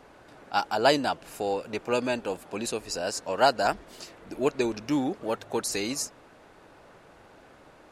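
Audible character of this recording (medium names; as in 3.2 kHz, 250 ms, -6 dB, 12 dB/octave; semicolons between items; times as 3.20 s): noise floor -54 dBFS; spectral tilt -3.5 dB/octave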